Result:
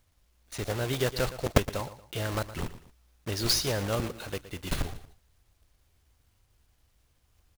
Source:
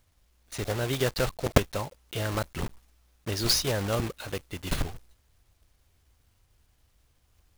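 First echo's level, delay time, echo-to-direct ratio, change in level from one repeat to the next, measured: -14.5 dB, 0.116 s, -14.0 dB, -9.0 dB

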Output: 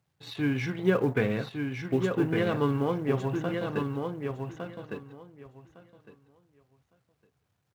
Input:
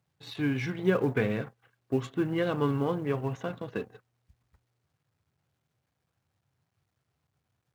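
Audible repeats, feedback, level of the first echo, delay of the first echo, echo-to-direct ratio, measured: 2, 17%, -5.0 dB, 1.158 s, -5.0 dB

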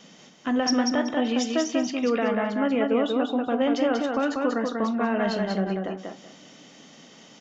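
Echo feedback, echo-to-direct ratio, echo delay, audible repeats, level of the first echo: 21%, -3.5 dB, 0.19 s, 3, -3.5 dB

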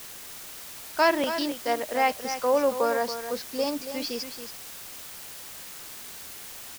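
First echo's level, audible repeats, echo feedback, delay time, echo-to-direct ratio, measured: -10.0 dB, 1, no steady repeat, 0.278 s, -10.0 dB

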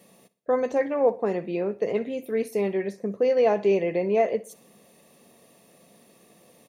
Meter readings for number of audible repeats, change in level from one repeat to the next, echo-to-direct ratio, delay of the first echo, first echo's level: 3, -7.5 dB, -18.0 dB, 61 ms, -19.0 dB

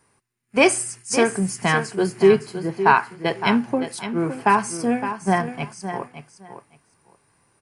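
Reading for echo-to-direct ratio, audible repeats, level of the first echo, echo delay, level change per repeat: -10.5 dB, 2, -10.5 dB, 0.563 s, -15.5 dB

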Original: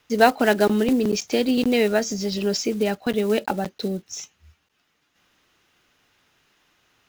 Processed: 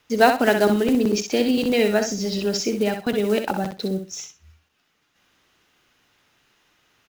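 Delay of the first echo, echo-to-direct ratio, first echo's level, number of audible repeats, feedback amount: 63 ms, -7.0 dB, -7.0 dB, 2, 19%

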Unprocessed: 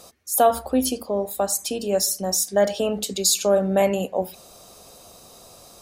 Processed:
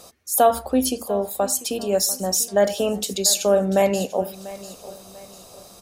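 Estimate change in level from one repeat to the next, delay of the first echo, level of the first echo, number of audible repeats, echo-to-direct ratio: -8.0 dB, 0.693 s, -17.5 dB, 3, -17.0 dB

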